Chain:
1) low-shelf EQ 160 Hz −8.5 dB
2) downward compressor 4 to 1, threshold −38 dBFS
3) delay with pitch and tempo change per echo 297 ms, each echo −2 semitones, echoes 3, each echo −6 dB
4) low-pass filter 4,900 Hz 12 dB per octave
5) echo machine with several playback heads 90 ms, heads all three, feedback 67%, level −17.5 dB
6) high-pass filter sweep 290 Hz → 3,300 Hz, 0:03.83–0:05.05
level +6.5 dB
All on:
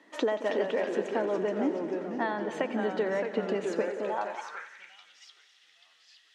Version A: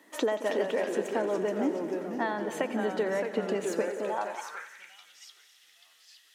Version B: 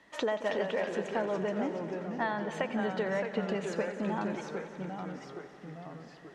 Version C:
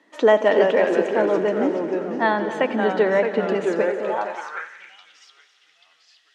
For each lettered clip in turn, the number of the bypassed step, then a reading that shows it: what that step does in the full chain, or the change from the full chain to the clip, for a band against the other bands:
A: 4, change in momentary loudness spread +6 LU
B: 6, 125 Hz band +6.5 dB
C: 2, average gain reduction 7.5 dB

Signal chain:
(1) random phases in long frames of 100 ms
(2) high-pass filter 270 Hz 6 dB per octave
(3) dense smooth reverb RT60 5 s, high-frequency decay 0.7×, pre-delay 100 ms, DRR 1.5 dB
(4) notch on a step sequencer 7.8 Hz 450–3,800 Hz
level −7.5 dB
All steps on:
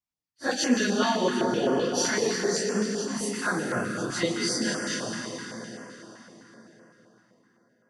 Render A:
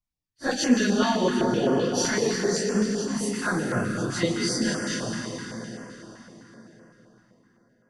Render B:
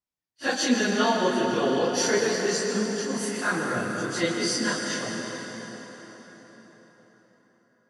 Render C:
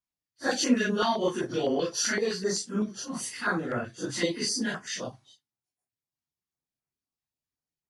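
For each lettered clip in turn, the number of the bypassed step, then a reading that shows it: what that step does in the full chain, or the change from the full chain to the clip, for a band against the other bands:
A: 2, change in integrated loudness +1.5 LU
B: 4, change in integrated loudness +1.5 LU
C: 3, change in momentary loudness spread −4 LU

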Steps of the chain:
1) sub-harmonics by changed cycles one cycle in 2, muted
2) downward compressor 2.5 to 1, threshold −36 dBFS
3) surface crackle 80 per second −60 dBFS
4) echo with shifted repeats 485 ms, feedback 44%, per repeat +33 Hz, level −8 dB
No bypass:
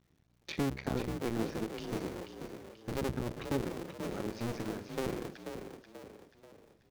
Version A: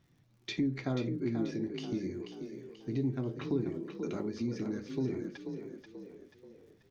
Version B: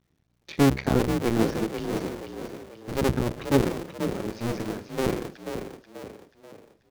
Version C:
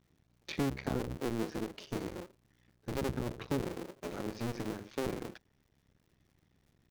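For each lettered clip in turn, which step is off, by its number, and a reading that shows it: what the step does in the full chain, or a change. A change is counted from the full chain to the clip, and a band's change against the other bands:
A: 1, 1 kHz band −7.0 dB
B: 2, average gain reduction 7.0 dB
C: 4, echo-to-direct ratio −7.0 dB to none audible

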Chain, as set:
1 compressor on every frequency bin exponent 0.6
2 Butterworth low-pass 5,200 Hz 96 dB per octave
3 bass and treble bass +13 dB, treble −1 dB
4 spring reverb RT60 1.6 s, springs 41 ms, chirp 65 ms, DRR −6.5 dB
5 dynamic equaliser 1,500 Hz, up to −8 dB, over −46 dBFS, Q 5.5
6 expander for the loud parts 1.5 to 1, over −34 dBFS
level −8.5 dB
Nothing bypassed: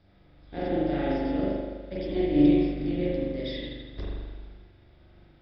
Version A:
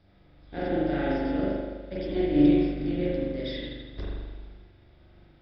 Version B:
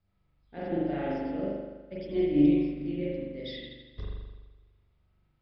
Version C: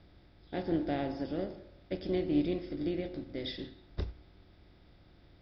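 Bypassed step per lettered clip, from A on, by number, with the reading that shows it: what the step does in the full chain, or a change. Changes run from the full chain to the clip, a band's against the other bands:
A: 5, 2 kHz band +2.5 dB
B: 1, change in integrated loudness −2.5 LU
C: 4, 4 kHz band +3.5 dB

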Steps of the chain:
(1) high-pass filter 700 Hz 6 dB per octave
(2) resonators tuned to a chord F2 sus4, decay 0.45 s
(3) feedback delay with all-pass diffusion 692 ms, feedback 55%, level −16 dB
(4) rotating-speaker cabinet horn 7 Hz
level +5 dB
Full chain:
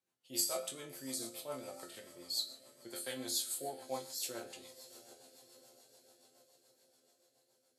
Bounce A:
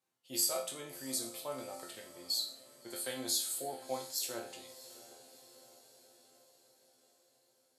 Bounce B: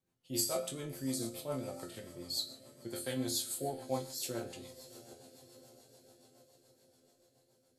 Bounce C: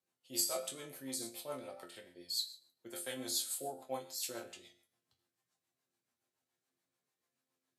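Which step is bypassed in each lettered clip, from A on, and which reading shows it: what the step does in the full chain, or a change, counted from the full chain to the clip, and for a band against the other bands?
4, change in crest factor −2.0 dB
1, 125 Hz band +13.0 dB
3, change in momentary loudness spread −2 LU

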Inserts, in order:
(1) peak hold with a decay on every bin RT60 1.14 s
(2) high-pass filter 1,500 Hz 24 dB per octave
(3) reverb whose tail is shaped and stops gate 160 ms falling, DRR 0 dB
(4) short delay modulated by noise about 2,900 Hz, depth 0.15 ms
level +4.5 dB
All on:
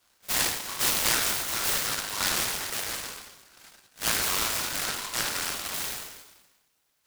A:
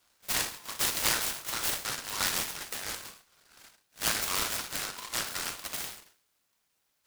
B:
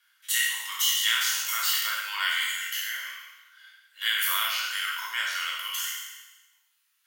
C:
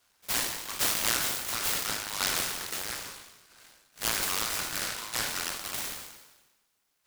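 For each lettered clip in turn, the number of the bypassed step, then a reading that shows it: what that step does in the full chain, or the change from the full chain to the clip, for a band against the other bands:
1, change in crest factor +3.5 dB
4, 500 Hz band −18.5 dB
3, change in integrated loudness −3.0 LU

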